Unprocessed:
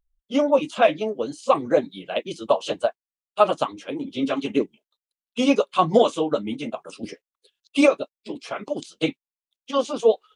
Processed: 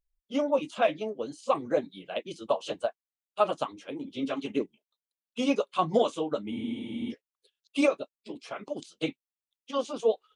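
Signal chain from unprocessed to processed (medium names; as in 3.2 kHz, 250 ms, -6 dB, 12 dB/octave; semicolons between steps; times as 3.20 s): spectral freeze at 6.52 s, 0.59 s; trim -7.5 dB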